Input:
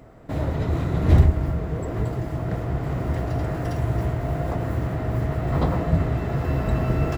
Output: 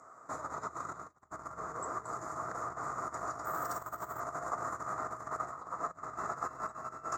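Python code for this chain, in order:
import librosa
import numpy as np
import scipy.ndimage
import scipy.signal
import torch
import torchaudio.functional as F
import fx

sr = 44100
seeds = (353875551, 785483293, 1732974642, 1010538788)

y = fx.over_compress(x, sr, threshold_db=-26.0, ratio=-0.5)
y = fx.double_bandpass(y, sr, hz=2900.0, octaves=2.5)
y = fx.resample_bad(y, sr, factor=3, down='none', up='hold', at=(3.45, 4.2))
y = y * librosa.db_to_amplitude(7.5)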